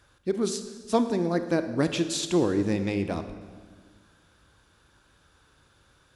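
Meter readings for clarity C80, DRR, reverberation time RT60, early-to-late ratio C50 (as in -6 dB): 11.5 dB, 9.5 dB, 1.6 s, 10.0 dB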